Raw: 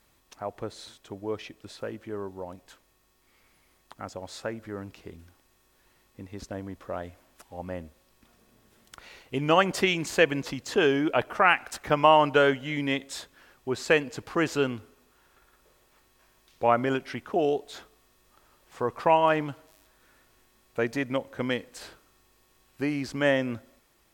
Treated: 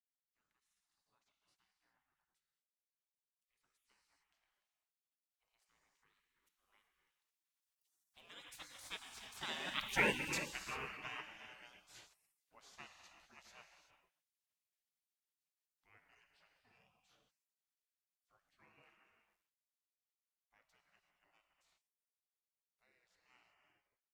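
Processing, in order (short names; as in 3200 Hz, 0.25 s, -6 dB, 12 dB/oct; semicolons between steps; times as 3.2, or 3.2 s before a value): Doppler pass-by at 9.99, 43 m/s, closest 2.7 m; non-linear reverb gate 0.41 s flat, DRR 3.5 dB; spectral gate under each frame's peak -20 dB weak; gain +9.5 dB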